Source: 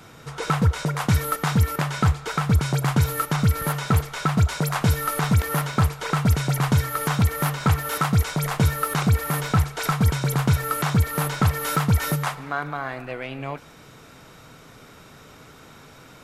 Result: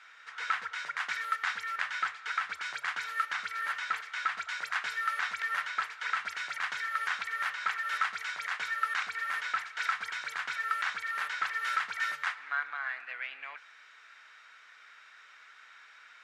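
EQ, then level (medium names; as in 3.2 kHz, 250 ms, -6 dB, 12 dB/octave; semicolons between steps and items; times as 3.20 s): resonant high-pass 1.7 kHz, resonance Q 2.7; distance through air 110 m; -6.5 dB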